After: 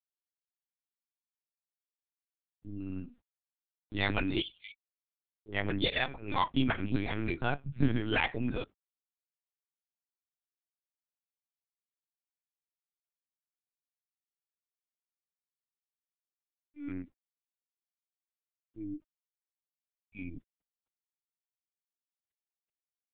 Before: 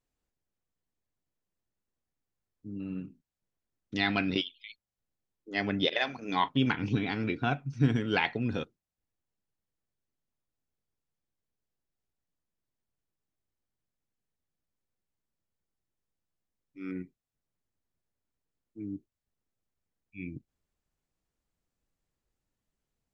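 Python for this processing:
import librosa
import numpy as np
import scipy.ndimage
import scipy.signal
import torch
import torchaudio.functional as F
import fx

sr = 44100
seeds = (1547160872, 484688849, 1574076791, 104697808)

y = fx.quant_dither(x, sr, seeds[0], bits=12, dither='none')
y = fx.lpc_vocoder(y, sr, seeds[1], excitation='pitch_kept', order=10)
y = F.gain(torch.from_numpy(y), -1.5).numpy()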